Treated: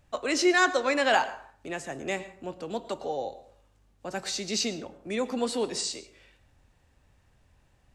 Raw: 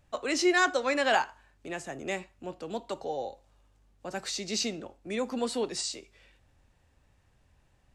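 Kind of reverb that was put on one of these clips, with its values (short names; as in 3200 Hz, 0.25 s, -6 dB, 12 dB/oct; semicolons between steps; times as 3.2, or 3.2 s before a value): plate-style reverb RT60 0.51 s, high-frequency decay 0.55×, pre-delay 95 ms, DRR 15 dB; gain +2 dB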